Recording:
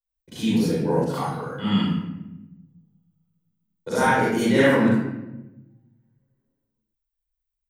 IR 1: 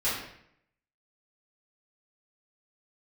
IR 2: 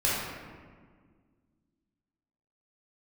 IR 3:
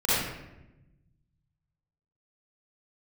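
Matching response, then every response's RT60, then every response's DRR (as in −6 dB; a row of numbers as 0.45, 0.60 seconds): 3; 0.70, 1.7, 0.95 seconds; −12.5, −9.0, −11.0 decibels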